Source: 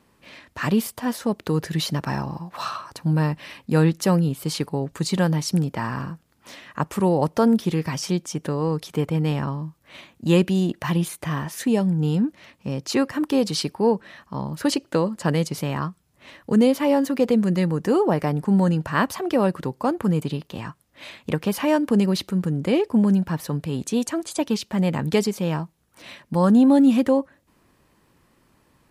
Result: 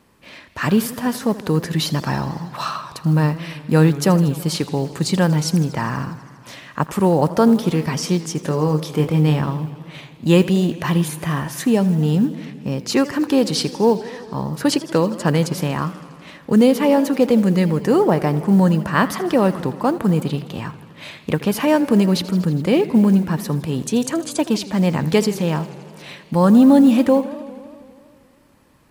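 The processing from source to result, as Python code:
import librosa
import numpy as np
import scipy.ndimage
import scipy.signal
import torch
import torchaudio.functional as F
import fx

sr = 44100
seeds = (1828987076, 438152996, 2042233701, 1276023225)

y = fx.mod_noise(x, sr, seeds[0], snr_db=35)
y = fx.doubler(y, sr, ms=26.0, db=-7.0, at=(8.4, 9.41))
y = fx.echo_warbled(y, sr, ms=81, feedback_pct=78, rate_hz=2.8, cents=140, wet_db=-17.0)
y = F.gain(torch.from_numpy(y), 4.0).numpy()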